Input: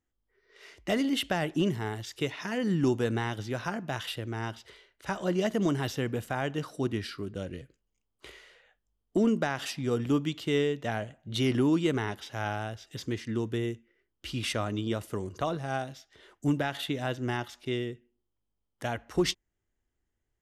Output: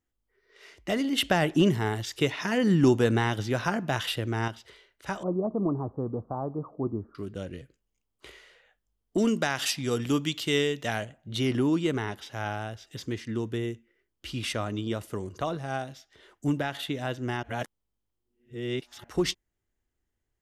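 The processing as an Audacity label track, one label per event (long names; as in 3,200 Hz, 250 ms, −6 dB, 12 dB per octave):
1.180000	4.480000	clip gain +5.5 dB
5.230000	7.150000	Chebyshev low-pass filter 1,200 Hz, order 6
9.180000	11.050000	high-shelf EQ 2,100 Hz +10.5 dB
17.430000	19.040000	reverse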